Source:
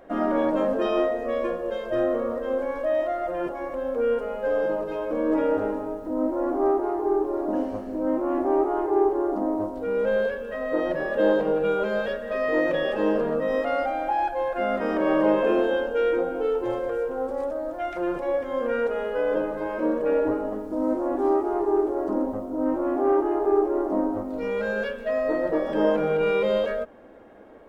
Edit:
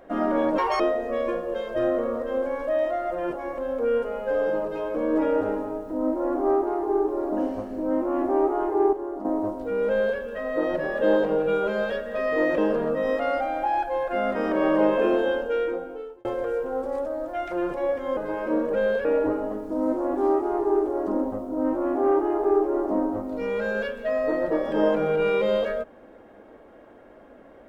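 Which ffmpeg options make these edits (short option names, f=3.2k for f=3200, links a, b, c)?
-filter_complex "[0:a]asplit=10[a][b][c][d][e][f][g][h][i][j];[a]atrim=end=0.584[k];[b]atrim=start=0.58:end=0.96,asetpts=PTS-STARTPTS,asetrate=76734,aresample=44100,atrim=end_sample=9631,asetpts=PTS-STARTPTS[l];[c]atrim=start=0.956:end=9.092[m];[d]atrim=start=9.088:end=9.412,asetpts=PTS-STARTPTS,volume=-7dB[n];[e]atrim=start=9.408:end=12.742[o];[f]atrim=start=13.028:end=16.7,asetpts=PTS-STARTPTS,afade=t=out:st=2.792:d=0.88[p];[g]atrim=start=16.7:end=18.622,asetpts=PTS-STARTPTS,afade=t=in:d=0.004:c=hsin[q];[h]atrim=start=19.488:end=20.062[r];[i]atrim=start=10.038:end=10.352[s];[j]atrim=start=20.058[t];[k][l]acrossfade=d=0.004:c1=hsin:c2=hsin[u];[u][m]acrossfade=d=0.004:c1=hsin:c2=hsin[v];[v][n]acrossfade=d=0.004:c1=hsin:c2=hsin[w];[w][o]acrossfade=d=0.004:c1=hsin:c2=hsin[x];[p][q]concat=n=2:v=0:a=1[y];[x][y]acrossfade=d=0.004:c1=hsin:c2=hsin[z];[z][r]acrossfade=d=0.004:c1=hsin:c2=hsin[aa];[aa][s]acrossfade=d=0.004:c1=hsin:c2=hsin[ab];[ab][t]acrossfade=d=0.004:c1=hsin:c2=hsin"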